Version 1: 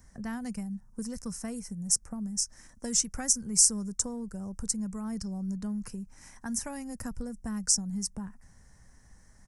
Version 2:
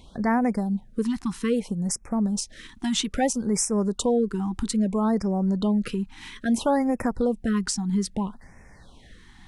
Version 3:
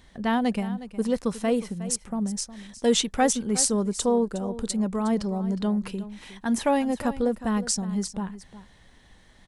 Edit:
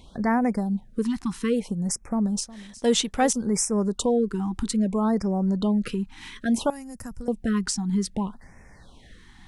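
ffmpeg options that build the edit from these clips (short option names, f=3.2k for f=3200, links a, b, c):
-filter_complex "[1:a]asplit=3[a][b][c];[a]atrim=end=2.432[d];[2:a]atrim=start=2.428:end=3.332[e];[b]atrim=start=3.328:end=6.702[f];[0:a]atrim=start=6.698:end=7.282[g];[c]atrim=start=7.278[h];[d][e]acrossfade=d=0.004:c1=hsin:c2=hsin[i];[i][f]acrossfade=d=0.004:c1=hsin:c2=hsin[j];[j][g]acrossfade=d=0.004:c1=hsin:c2=hsin[k];[k][h]acrossfade=d=0.004:c1=hsin:c2=hsin"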